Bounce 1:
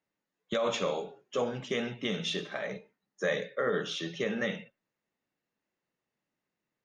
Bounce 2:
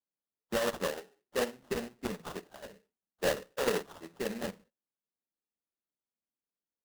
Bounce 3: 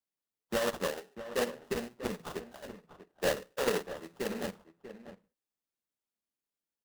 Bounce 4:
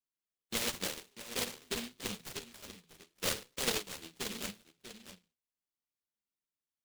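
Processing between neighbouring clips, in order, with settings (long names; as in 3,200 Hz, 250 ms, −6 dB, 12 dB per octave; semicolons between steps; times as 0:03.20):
low shelf with overshoot 160 Hz −9 dB, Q 1.5; sample-rate reduction 2,300 Hz, jitter 20%; expander for the loud parts 2.5 to 1, over −38 dBFS; level +1 dB
slap from a distant wall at 110 metres, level −12 dB
flanger 0.84 Hz, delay 7.1 ms, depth 5.9 ms, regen +56%; short delay modulated by noise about 3,100 Hz, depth 0.42 ms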